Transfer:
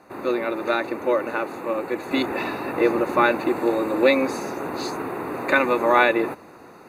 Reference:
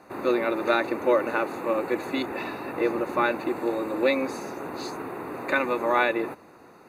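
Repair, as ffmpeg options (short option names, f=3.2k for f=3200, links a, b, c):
-af "asetnsamples=n=441:p=0,asendcmd='2.11 volume volume -5.5dB',volume=0dB"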